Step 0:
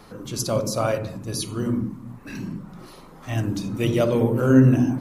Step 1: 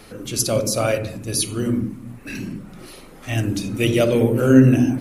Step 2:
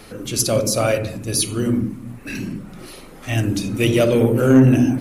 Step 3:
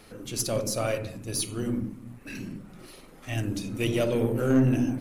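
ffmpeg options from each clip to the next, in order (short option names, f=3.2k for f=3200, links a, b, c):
-af "equalizer=f=160:t=o:w=0.67:g=-6,equalizer=f=1k:t=o:w=0.67:g=-9,equalizer=f=2.5k:t=o:w=0.67:g=5,equalizer=f=10k:t=o:w=0.67:g=6,volume=4.5dB"
-af "acontrast=46,volume=-3.5dB"
-af "aeval=exprs='if(lt(val(0),0),0.708*val(0),val(0))':c=same,volume=-8.5dB"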